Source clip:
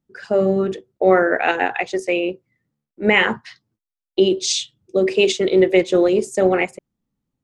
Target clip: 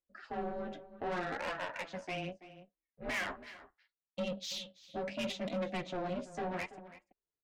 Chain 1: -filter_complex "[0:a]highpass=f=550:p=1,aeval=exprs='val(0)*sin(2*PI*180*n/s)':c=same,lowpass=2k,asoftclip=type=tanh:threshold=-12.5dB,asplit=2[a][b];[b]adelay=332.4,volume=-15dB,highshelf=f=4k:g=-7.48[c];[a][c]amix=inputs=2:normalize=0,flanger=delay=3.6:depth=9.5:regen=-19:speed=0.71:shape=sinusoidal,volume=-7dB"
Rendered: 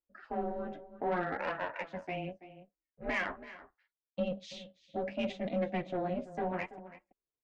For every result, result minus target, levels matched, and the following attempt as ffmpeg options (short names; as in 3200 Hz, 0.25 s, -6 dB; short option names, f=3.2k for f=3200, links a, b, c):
4000 Hz band -8.0 dB; soft clip: distortion -9 dB
-filter_complex "[0:a]highpass=f=550:p=1,aeval=exprs='val(0)*sin(2*PI*180*n/s)':c=same,lowpass=4.2k,asoftclip=type=tanh:threshold=-12.5dB,asplit=2[a][b];[b]adelay=332.4,volume=-15dB,highshelf=f=4k:g=-7.48[c];[a][c]amix=inputs=2:normalize=0,flanger=delay=3.6:depth=9.5:regen=-19:speed=0.71:shape=sinusoidal,volume=-7dB"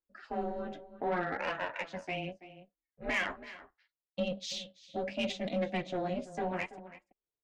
soft clip: distortion -8 dB
-filter_complex "[0:a]highpass=f=550:p=1,aeval=exprs='val(0)*sin(2*PI*180*n/s)':c=same,lowpass=4.2k,asoftclip=type=tanh:threshold=-21dB,asplit=2[a][b];[b]adelay=332.4,volume=-15dB,highshelf=f=4k:g=-7.48[c];[a][c]amix=inputs=2:normalize=0,flanger=delay=3.6:depth=9.5:regen=-19:speed=0.71:shape=sinusoidal,volume=-7dB"